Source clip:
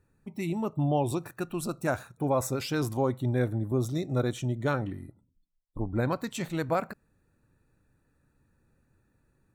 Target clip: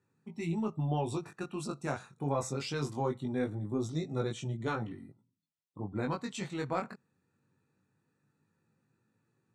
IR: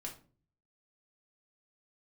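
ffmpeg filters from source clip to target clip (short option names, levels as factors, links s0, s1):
-af "highpass=f=120:w=0.5412,highpass=f=120:w=1.3066,equalizer=f=300:t=q:w=4:g=-4,equalizer=f=600:t=q:w=4:g=-8,equalizer=f=1600:t=q:w=4:g=-4,lowpass=f=8400:w=0.5412,lowpass=f=8400:w=1.3066,aeval=exprs='0.168*(cos(1*acos(clip(val(0)/0.168,-1,1)))-cos(1*PI/2))+0.00596*(cos(2*acos(clip(val(0)/0.168,-1,1)))-cos(2*PI/2))':c=same,flanger=delay=18:depth=3.5:speed=0.21"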